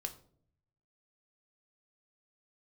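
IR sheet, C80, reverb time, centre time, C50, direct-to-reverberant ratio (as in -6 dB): 17.5 dB, 0.60 s, 9 ms, 14.5 dB, 6.5 dB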